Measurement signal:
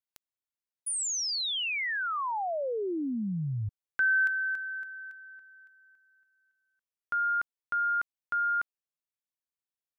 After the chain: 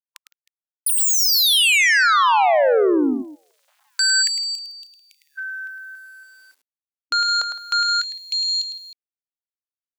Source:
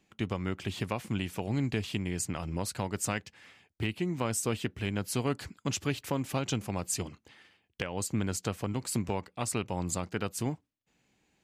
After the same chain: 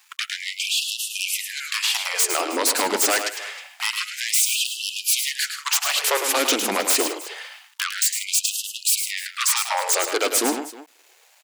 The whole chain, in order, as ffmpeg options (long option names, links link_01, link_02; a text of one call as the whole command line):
ffmpeg -i in.wav -af "bass=frequency=250:gain=-15,treble=frequency=4000:gain=4,aeval=exprs='0.188*sin(PI/2*6.31*val(0)/0.188)':channel_layout=same,aecho=1:1:106|161|313:0.422|0.141|0.119,aeval=exprs='val(0)*gte(abs(val(0)),0.00355)':channel_layout=same,afftfilt=real='re*gte(b*sr/1024,210*pow(2600/210,0.5+0.5*sin(2*PI*0.26*pts/sr)))':imag='im*gte(b*sr/1024,210*pow(2600/210,0.5+0.5*sin(2*PI*0.26*pts/sr)))':win_size=1024:overlap=0.75" out.wav